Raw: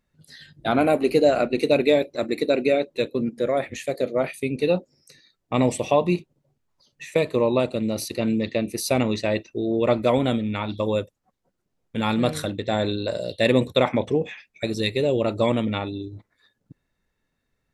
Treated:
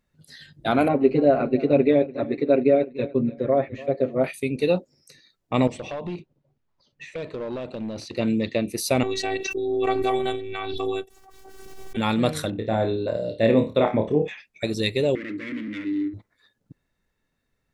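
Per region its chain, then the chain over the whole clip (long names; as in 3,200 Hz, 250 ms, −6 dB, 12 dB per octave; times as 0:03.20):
0:00.88–0:04.24: head-to-tape spacing loss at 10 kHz 43 dB + comb filter 7.4 ms, depth 98% + repeating echo 292 ms, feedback 32%, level −19 dB
0:05.67–0:08.17: downward compressor 10 to 1, threshold −24 dBFS + hard clipping −26 dBFS + high-frequency loss of the air 130 metres
0:09.03–0:11.97: parametric band 75 Hz −11.5 dB 0.82 octaves + phases set to zero 383 Hz + background raised ahead of every attack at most 26 dB per second
0:12.50–0:14.28: low-pass filter 1,100 Hz 6 dB per octave + flutter between parallel walls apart 4.6 metres, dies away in 0.27 s
0:15.15–0:16.14: leveller curve on the samples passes 3 + gain into a clipping stage and back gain 18 dB + pair of resonant band-passes 770 Hz, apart 2.8 octaves
whole clip: no processing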